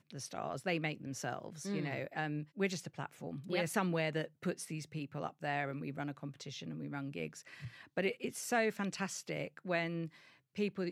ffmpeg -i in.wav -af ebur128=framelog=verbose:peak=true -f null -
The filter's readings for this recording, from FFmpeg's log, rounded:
Integrated loudness:
  I:         -39.0 LUFS
  Threshold: -49.1 LUFS
Loudness range:
  LRA:         3.6 LU
  Threshold: -59.1 LUFS
  LRA low:   -41.5 LUFS
  LRA high:  -38.0 LUFS
True peak:
  Peak:      -16.8 dBFS